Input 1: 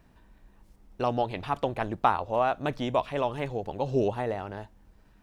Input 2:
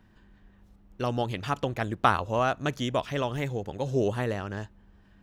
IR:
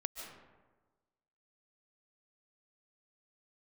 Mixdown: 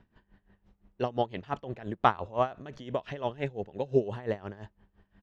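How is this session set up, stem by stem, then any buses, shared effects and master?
-9.5 dB, 0.00 s, no send, small resonant body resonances 220/410/2700 Hz, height 9 dB
-1.0 dB, 0.6 ms, polarity flipped, no send, none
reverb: none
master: low-pass 3.9 kHz 12 dB/octave; logarithmic tremolo 5.8 Hz, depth 18 dB

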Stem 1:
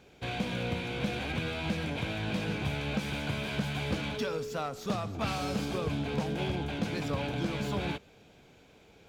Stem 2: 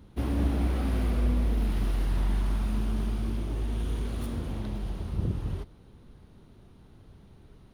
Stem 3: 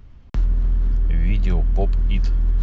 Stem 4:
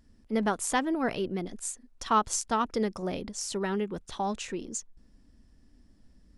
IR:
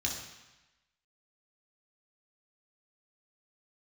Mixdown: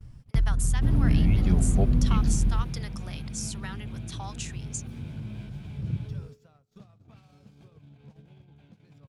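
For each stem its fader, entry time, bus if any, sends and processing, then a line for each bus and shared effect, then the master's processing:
-7.5 dB, 1.90 s, no send, peak limiter -28 dBFS, peak gain reduction 7.5 dB; compression 20:1, threshold -42 dBFS, peak gain reduction 11.5 dB
2.29 s -8.5 dB -> 2.89 s -18 dB, 0.65 s, no send, peaking EQ 160 Hz +8.5 dB 2.5 oct
-5.5 dB, 0.00 s, no send, reverb removal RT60 0.69 s
-5.5 dB, 0.00 s, no send, high-pass 840 Hz 12 dB/octave; tilt EQ +3.5 dB/octave; compression, threshold -27 dBFS, peak gain reduction 10 dB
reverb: none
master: gate -51 dBFS, range -29 dB; peaking EQ 130 Hz +14 dB 1.1 oct

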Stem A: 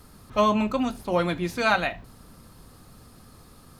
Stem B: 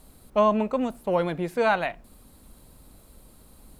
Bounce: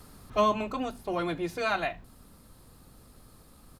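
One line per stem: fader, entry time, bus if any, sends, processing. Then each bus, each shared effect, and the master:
-0.5 dB, 0.00 s, no send, auto duck -7 dB, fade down 0.90 s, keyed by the second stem
-8.0 dB, 0.6 ms, no send, compressor with a negative ratio -24 dBFS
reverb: none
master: none

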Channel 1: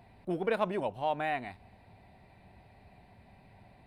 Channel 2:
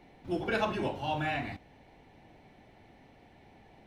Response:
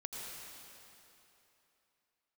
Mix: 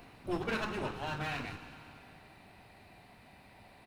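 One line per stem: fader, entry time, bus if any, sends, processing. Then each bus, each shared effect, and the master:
+2.0 dB, 0.00 s, no send, tilt EQ +2.5 dB/octave; compression, threshold -41 dBFS, peak gain reduction 15.5 dB
+2.0 dB, 1 ms, send -13 dB, comb filter that takes the minimum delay 0.74 ms; auto duck -9 dB, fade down 0.65 s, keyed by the first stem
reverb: on, RT60 3.1 s, pre-delay 77 ms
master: none

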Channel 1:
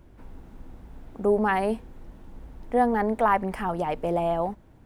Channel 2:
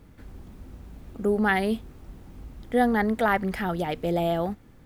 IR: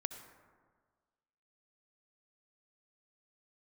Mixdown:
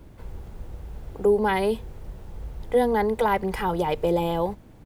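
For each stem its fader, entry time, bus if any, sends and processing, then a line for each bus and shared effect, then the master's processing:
+3.0 dB, 0.00 s, no send, compression, threshold -25 dBFS, peak gain reduction 9 dB
+1.0 dB, 1.7 ms, no send, peaking EQ 1.5 kHz -14 dB 0.53 oct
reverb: none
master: none

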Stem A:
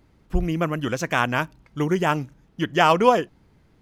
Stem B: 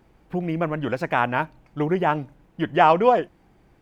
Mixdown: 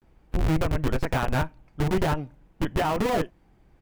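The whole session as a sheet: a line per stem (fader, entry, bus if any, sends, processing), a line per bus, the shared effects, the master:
+1.0 dB, 0.00 s, no send, Schmitt trigger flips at -21 dBFS; tone controls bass +3 dB, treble -5 dB
-5.0 dB, 18 ms, polarity flipped, no send, bass shelf 78 Hz +9.5 dB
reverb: none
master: peak limiter -16.5 dBFS, peak gain reduction 9.5 dB

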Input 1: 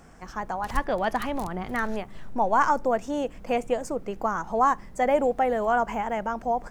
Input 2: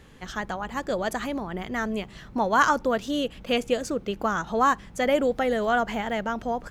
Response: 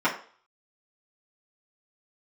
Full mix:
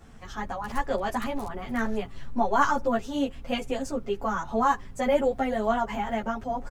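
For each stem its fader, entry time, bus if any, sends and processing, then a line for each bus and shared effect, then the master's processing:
-1.0 dB, 0.00 s, no send, none
-4.0 dB, 7 ms, no send, bass shelf 160 Hz +11.5 dB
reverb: none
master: three-phase chorus

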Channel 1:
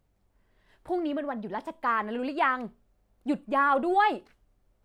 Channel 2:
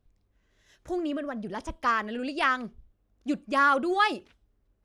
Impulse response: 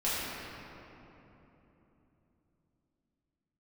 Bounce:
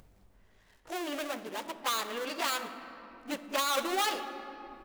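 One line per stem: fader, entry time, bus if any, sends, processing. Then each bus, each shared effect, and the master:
-5.0 dB, 0.00 s, send -22.5 dB, upward compressor, threshold -41 dBFS; auto duck -11 dB, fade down 0.85 s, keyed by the second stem
+1.5 dB, 17 ms, send -21 dB, dead-time distortion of 0.25 ms; Bessel high-pass 570 Hz, order 6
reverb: on, RT60 3.4 s, pre-delay 4 ms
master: peak limiter -17.5 dBFS, peak gain reduction 7.5 dB

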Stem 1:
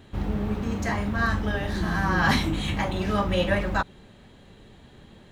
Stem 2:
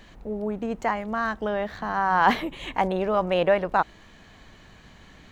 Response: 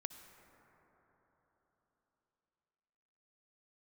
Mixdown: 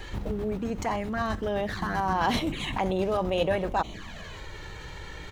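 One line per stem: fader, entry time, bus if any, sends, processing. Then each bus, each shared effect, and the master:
-0.5 dB, 0.00 s, no send, tone controls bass +1 dB, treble +6 dB; square tremolo 7.7 Hz, depth 60%, duty 40%; auto duck -7 dB, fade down 0.60 s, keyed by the second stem
-5.0 dB, 0.5 ms, no send, touch-sensitive flanger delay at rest 2.5 ms, full sweep at -22 dBFS; level flattener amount 50%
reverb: none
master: none

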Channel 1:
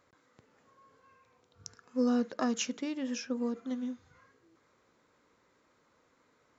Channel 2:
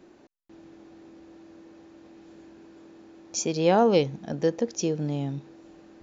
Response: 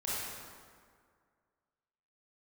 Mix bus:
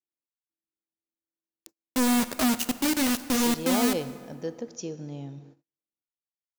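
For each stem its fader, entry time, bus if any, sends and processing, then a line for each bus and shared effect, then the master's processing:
+2.0 dB, 0.00 s, send -16.5 dB, low-pass 1.2 kHz 6 dB/octave; companded quantiser 2-bit; upward expansion 1.5:1, over -39 dBFS
-10.0 dB, 0.00 s, send -17 dB, treble shelf 2.5 kHz -7.5 dB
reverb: on, RT60 2.0 s, pre-delay 23 ms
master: treble shelf 3.7 kHz +11.5 dB; gate -50 dBFS, range -44 dB

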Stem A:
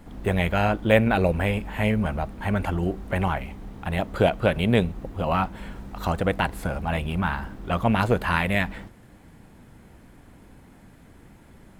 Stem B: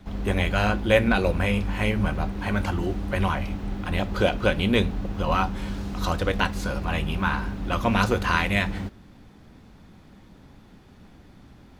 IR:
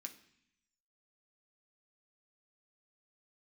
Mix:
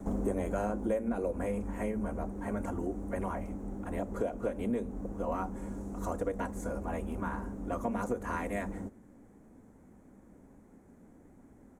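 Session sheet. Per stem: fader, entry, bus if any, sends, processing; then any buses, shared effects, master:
-15.0 dB, 0.00 s, no send, treble shelf 8.8 kHz -4 dB
0.0 dB, 1.3 ms, no send, graphic EQ 125/250/500/1000/2000/4000/8000 Hz -4/+10/+9/+3/-9/-7/+11 dB; auto duck -14 dB, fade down 1.75 s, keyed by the first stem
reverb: none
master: high-order bell 3.7 kHz -10.5 dB 1.2 oct; compression 6:1, threshold -29 dBFS, peak gain reduction 15.5 dB

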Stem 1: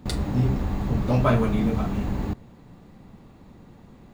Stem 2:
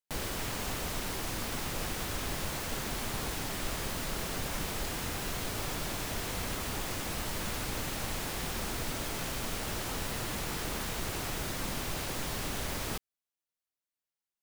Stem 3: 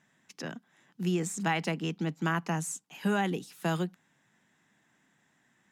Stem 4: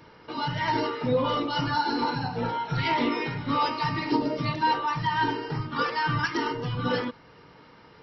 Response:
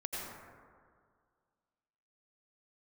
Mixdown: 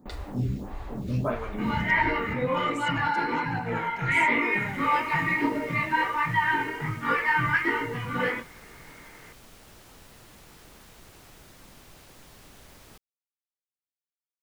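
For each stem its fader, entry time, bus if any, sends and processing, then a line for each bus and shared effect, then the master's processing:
-5.0 dB, 0.00 s, no send, lamp-driven phase shifter 1.6 Hz
-15.5 dB, 0.00 s, no send, auto duck -12 dB, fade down 0.40 s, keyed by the first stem
-10.5 dB, 1.50 s, no send, none
+0.5 dB, 1.30 s, no send, chorus voices 2, 1.3 Hz, delay 20 ms, depth 3 ms; resonant low-pass 2.1 kHz, resonance Q 5.1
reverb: none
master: none

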